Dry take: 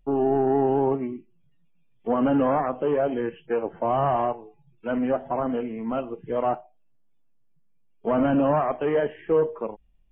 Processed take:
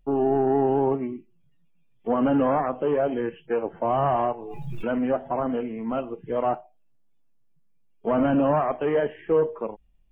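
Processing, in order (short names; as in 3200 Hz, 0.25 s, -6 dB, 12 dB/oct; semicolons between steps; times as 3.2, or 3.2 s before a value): 4.05–4.93 backwards sustainer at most 27 dB/s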